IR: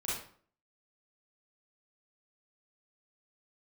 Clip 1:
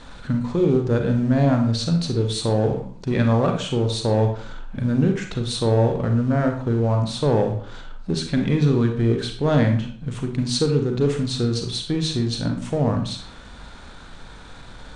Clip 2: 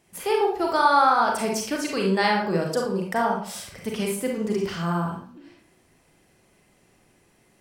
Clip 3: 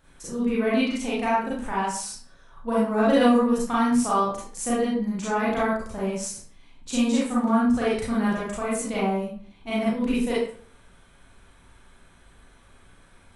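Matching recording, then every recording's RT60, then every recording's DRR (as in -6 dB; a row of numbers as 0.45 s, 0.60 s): 3; 0.50 s, 0.50 s, 0.50 s; 3.5 dB, -0.5 dB, -8.5 dB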